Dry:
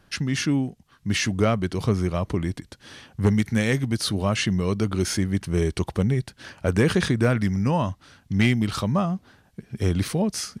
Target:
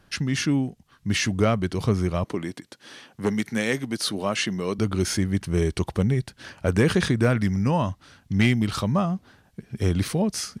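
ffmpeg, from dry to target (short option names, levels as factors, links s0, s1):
-filter_complex "[0:a]asettb=1/sr,asplit=3[s0][s1][s2];[s0]atrim=end=2.244[s3];[s1]atrim=start=2.24:end=4.79,asetpts=PTS-STARTPTS,afade=t=in:d=0.004:c=qsin,afade=t=out:st=2.546:d=0.004:c=qsin,highpass=230[s4];[s2]atrim=start=4.786[s5];[s3][s4]acrossfade=d=0.004:c1=hsin:c2=qsin[s6];[s6][s5]acrossfade=d=0.004:c1=qsin:c2=hsin"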